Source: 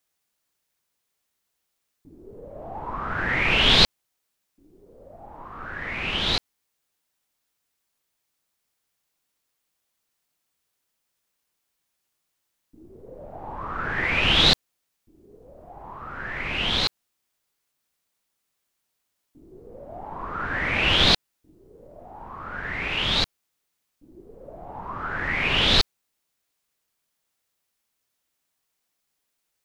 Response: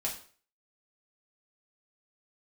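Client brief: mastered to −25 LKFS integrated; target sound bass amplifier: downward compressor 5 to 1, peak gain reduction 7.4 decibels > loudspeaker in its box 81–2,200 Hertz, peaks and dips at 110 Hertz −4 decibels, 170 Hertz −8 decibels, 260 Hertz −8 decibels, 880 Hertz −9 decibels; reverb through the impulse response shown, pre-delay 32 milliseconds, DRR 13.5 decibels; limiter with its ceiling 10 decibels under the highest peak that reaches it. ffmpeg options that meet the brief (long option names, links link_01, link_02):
-filter_complex "[0:a]alimiter=limit=-14dB:level=0:latency=1,asplit=2[link_01][link_02];[1:a]atrim=start_sample=2205,adelay=32[link_03];[link_02][link_03]afir=irnorm=-1:irlink=0,volume=-17dB[link_04];[link_01][link_04]amix=inputs=2:normalize=0,acompressor=threshold=-27dB:ratio=5,highpass=frequency=81:width=0.5412,highpass=frequency=81:width=1.3066,equalizer=frequency=110:width_type=q:width=4:gain=-4,equalizer=frequency=170:width_type=q:width=4:gain=-8,equalizer=frequency=260:width_type=q:width=4:gain=-8,equalizer=frequency=880:width_type=q:width=4:gain=-9,lowpass=frequency=2200:width=0.5412,lowpass=frequency=2200:width=1.3066,volume=10.5dB"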